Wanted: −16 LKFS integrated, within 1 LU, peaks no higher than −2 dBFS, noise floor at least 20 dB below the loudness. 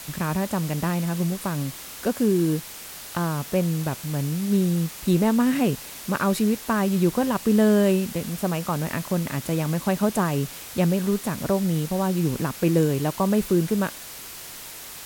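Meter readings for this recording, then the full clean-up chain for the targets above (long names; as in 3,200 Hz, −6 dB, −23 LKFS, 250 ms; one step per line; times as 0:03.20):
background noise floor −39 dBFS; target noise floor −44 dBFS; integrated loudness −24.0 LKFS; sample peak −7.5 dBFS; target loudness −16.0 LKFS
→ broadband denoise 6 dB, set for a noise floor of −39 dBFS
level +8 dB
brickwall limiter −2 dBFS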